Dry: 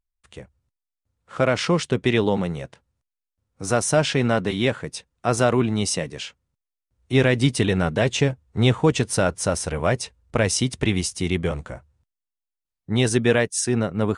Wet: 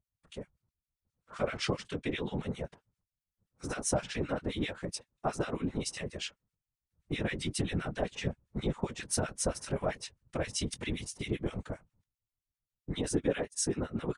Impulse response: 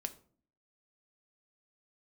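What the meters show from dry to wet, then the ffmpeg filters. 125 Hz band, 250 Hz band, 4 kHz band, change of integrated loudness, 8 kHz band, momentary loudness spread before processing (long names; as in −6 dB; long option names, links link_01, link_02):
−14.5 dB, −13.0 dB, −12.0 dB, −13.5 dB, −10.0 dB, 13 LU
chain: -filter_complex "[0:a]acompressor=threshold=-23dB:ratio=6,asplit=2[link_01][link_02];[link_02]adelay=21,volume=-10.5dB[link_03];[link_01][link_03]amix=inputs=2:normalize=0,acrossover=split=1300[link_04][link_05];[link_04]aeval=exprs='val(0)*(1-1/2+1/2*cos(2*PI*7.6*n/s))':channel_layout=same[link_06];[link_05]aeval=exprs='val(0)*(1-1/2-1/2*cos(2*PI*7.6*n/s))':channel_layout=same[link_07];[link_06][link_07]amix=inputs=2:normalize=0,afftfilt=real='hypot(re,im)*cos(2*PI*random(0))':imag='hypot(re,im)*sin(2*PI*random(1))':win_size=512:overlap=0.75,volume=3.5dB"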